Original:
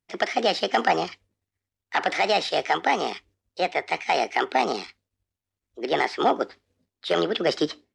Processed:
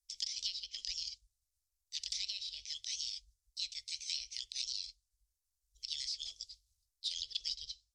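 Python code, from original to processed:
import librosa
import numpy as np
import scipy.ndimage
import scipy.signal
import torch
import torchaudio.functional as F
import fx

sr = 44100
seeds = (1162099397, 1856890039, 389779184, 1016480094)

y = scipy.signal.sosfilt(scipy.signal.cheby2(4, 60, [170.0, 1600.0], 'bandstop', fs=sr, output='sos'), x)
y = fx.env_lowpass_down(y, sr, base_hz=2400.0, full_db=-35.0)
y = y * librosa.db_to_amplitude(6.0)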